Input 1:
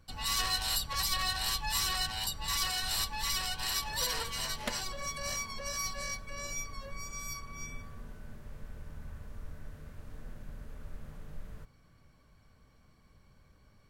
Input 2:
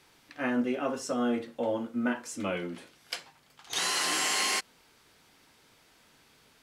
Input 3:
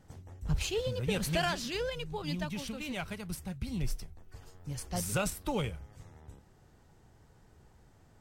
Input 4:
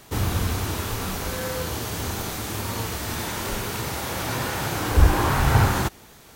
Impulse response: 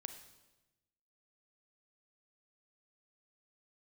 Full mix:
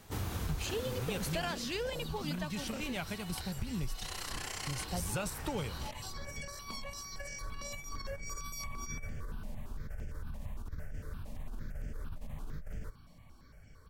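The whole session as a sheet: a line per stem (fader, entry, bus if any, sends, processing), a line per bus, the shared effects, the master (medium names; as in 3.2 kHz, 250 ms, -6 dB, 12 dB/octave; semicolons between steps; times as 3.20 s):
+2.0 dB, 1.25 s, no send, compressor with a negative ratio -43 dBFS, ratio -1; stepped phaser 8.8 Hz 380–3900 Hz
-9.5 dB, 0.25 s, no send, AM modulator 31 Hz, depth 95%
+1.5 dB, 0.00 s, no send, vibrato 0.49 Hz 5.1 cents
1.30 s -10 dB -> 1.61 s -23 dB, 0.00 s, no send, none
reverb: none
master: compression 3:1, threshold -34 dBFS, peak gain reduction 9 dB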